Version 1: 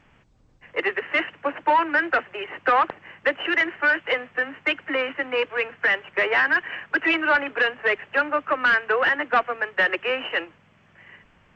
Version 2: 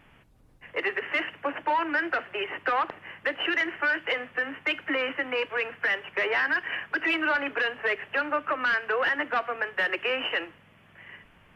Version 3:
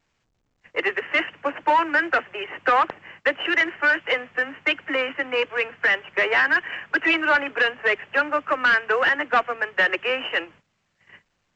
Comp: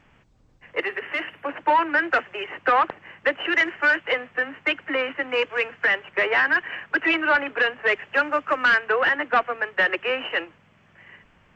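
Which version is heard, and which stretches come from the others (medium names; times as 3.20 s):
1
0.81–1.49 s: from 2
2.11–2.54 s: from 3
3.55–3.96 s: from 3
5.29–5.85 s: from 3
7.88–8.78 s: from 3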